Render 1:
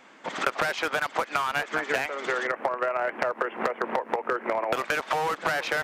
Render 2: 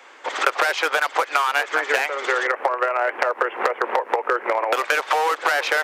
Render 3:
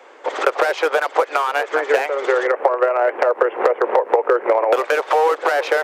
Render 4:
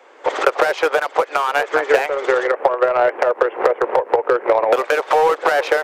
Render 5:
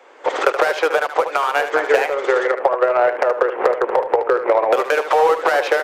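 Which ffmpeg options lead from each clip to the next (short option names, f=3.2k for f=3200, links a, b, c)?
-af "highpass=f=390:w=0.5412,highpass=f=390:w=1.3066,bandreject=f=650:w=12,volume=7dB"
-af "equalizer=f=470:t=o:w=1.9:g=13.5,volume=-4.5dB"
-af "dynaudnorm=f=150:g=3:m=11.5dB,aeval=exprs='0.944*(cos(1*acos(clip(val(0)/0.944,-1,1)))-cos(1*PI/2))+0.0299*(cos(7*acos(clip(val(0)/0.944,-1,1)))-cos(7*PI/2))':c=same,volume=-1dB"
-filter_complex "[0:a]asplit=2[a][b];[b]asoftclip=type=tanh:threshold=-12dB,volume=-11.5dB[c];[a][c]amix=inputs=2:normalize=0,aecho=1:1:75:0.316,volume=-2dB"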